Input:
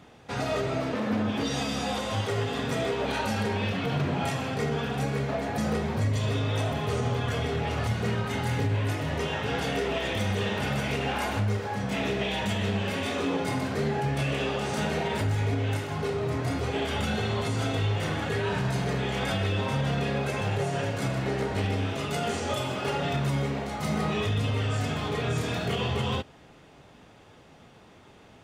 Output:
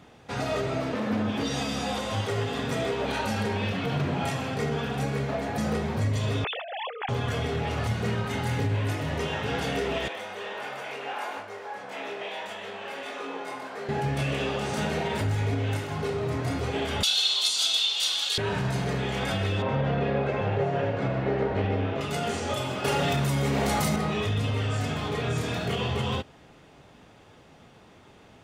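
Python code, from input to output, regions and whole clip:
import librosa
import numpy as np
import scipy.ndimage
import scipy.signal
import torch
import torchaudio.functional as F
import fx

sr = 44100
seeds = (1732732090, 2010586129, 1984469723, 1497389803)

y = fx.chain(x, sr, fx.sine_speech(),
    fx.highpass(hz=600.0, slope=12),
    fx.over_compress(threshold_db=-33.0, ratio=-0.5), at=(6.44, 7.09))
y = fx.chain(y, sr, fx.highpass(hz=650.0, slope=12),
    fx.high_shelf(hz=2000.0, db=-11.0),
    fx.doubler(ms=22.0, db=-5.0), at=(10.08, 13.89))
y = fx.chain(y, sr, fx.highpass(hz=1300.0, slope=12),
    fx.high_shelf_res(hz=2700.0, db=12.0, q=3.0), at=(17.03, 18.38))
y = fx.chain(y, sr, fx.lowpass(hz=2600.0, slope=12),
    fx.peak_eq(hz=520.0, db=5.0, octaves=1.2), at=(19.62, 22.01))
y = fx.chain(y, sr, fx.high_shelf(hz=7500.0, db=12.0),
    fx.env_flatten(amount_pct=100), at=(22.84, 23.96))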